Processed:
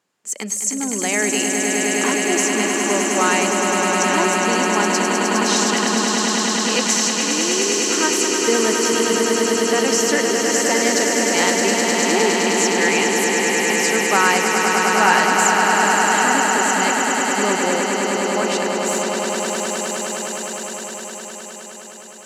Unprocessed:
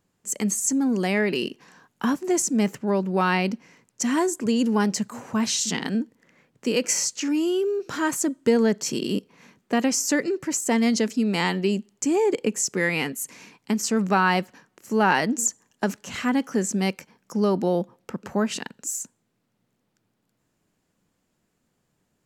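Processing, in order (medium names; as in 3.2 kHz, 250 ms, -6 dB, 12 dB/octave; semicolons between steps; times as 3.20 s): frequency weighting A; on a send: echo with a slow build-up 103 ms, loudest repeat 8, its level -5.5 dB; on the sum: trim +3.5 dB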